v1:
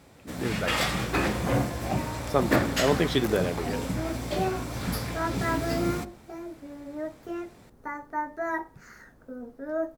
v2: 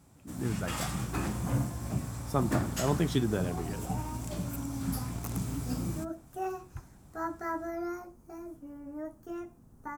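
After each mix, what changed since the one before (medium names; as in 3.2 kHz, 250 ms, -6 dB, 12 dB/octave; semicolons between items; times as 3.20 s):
first sound -4.0 dB; second sound: entry +2.00 s; master: add graphic EQ 125/500/2000/4000/8000 Hz +3/-10/-9/-8/+4 dB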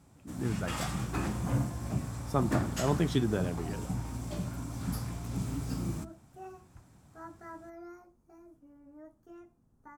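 second sound -11.5 dB; master: add treble shelf 9.9 kHz -8 dB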